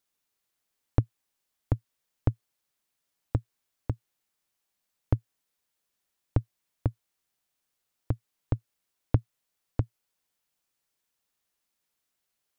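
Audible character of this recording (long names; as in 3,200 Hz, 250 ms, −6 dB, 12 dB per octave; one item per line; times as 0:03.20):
background noise floor −82 dBFS
spectral slope −10.0 dB per octave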